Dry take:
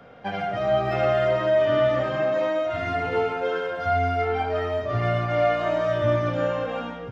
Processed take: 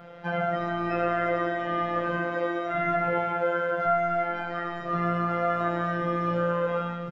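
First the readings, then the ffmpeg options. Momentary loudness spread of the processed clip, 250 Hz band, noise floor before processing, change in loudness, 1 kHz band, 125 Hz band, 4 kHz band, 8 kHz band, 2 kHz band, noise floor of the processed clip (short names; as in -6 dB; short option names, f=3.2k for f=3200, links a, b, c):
4 LU, +1.0 dB, -35 dBFS, -3.5 dB, -0.5 dB, -5.5 dB, -8.0 dB, n/a, -0.5 dB, -35 dBFS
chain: -filter_complex "[0:a]asplit=2[a][b];[b]adelay=12,volume=-7dB[c];[a][c]amix=inputs=2:normalize=0,asplit=2[d][e];[e]alimiter=limit=-20dB:level=0:latency=1,volume=-3dB[f];[d][f]amix=inputs=2:normalize=0,afftfilt=real='hypot(re,im)*cos(PI*b)':imag='0':win_size=1024:overlap=0.75,acrossover=split=2600[g][h];[h]acompressor=threshold=-52dB:ratio=4:attack=1:release=60[i];[g][i]amix=inputs=2:normalize=0"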